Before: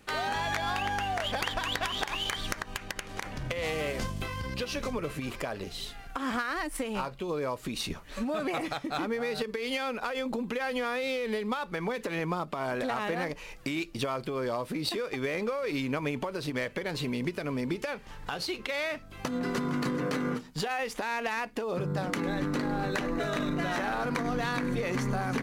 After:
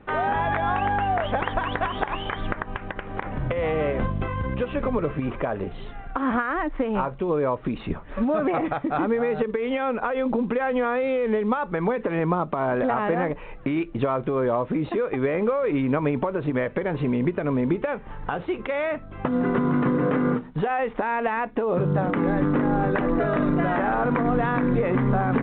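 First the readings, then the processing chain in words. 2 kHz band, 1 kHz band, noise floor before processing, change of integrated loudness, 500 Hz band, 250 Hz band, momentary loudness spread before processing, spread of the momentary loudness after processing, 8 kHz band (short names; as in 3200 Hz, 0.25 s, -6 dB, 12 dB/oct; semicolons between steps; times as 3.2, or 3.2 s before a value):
+3.0 dB, +8.0 dB, -48 dBFS, +7.5 dB, +9.0 dB, +9.0 dB, 5 LU, 7 LU, under -35 dB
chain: LPF 1400 Hz 12 dB/oct; gain +9 dB; A-law 64 kbps 8000 Hz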